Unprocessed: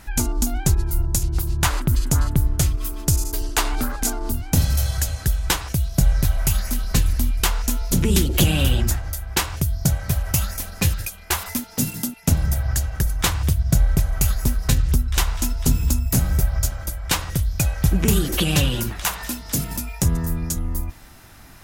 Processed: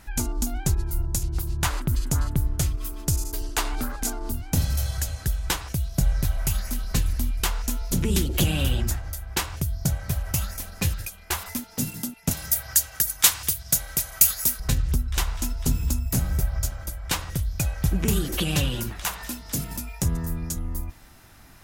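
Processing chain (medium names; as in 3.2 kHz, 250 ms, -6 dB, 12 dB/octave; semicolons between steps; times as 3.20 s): 12.31–14.60 s: tilt EQ +4 dB/octave; trim -5 dB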